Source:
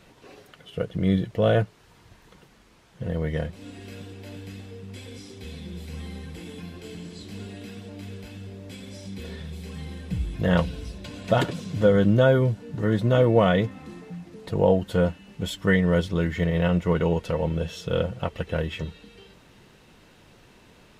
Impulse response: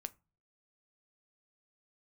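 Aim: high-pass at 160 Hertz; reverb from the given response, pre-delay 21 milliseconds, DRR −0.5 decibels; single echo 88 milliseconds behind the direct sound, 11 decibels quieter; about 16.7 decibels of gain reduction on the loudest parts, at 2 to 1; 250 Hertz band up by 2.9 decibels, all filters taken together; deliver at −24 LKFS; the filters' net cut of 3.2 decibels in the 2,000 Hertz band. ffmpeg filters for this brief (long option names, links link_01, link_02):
-filter_complex "[0:a]highpass=160,equalizer=frequency=250:width_type=o:gain=6.5,equalizer=frequency=2000:width_type=o:gain=-4.5,acompressor=threshold=-45dB:ratio=2,aecho=1:1:88:0.282,asplit=2[link_01][link_02];[1:a]atrim=start_sample=2205,adelay=21[link_03];[link_02][link_03]afir=irnorm=-1:irlink=0,volume=4dB[link_04];[link_01][link_04]amix=inputs=2:normalize=0,volume=12dB"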